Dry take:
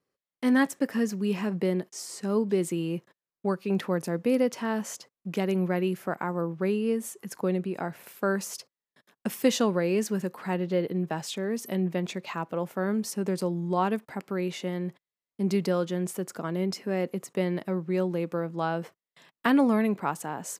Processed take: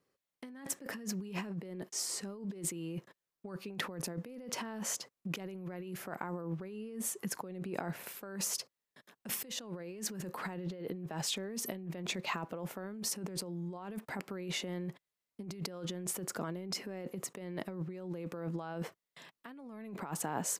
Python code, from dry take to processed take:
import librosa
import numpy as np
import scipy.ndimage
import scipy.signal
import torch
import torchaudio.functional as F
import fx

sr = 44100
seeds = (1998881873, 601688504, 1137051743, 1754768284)

y = fx.over_compress(x, sr, threshold_db=-36.0, ratio=-1.0)
y = F.gain(torch.from_numpy(y), -5.0).numpy()